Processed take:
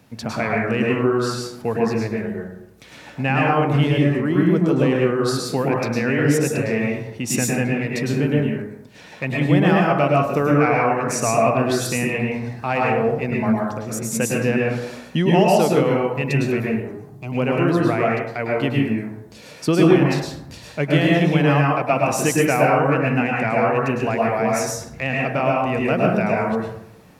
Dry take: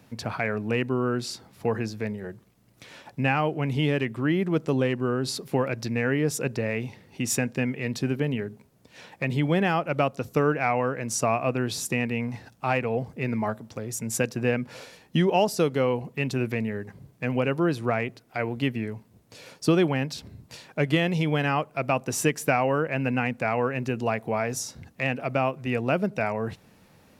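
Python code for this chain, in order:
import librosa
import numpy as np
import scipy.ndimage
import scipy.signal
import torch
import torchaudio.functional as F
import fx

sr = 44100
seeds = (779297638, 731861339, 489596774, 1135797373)

y = fx.peak_eq(x, sr, hz=2500.0, db=-7.5, octaves=0.99, at=(3.91, 4.6))
y = fx.fixed_phaser(y, sr, hz=340.0, stages=8, at=(16.64, 17.32))
y = fx.rev_plate(y, sr, seeds[0], rt60_s=0.78, hf_ratio=0.45, predelay_ms=95, drr_db=-3.0)
y = y * 10.0 ** (2.0 / 20.0)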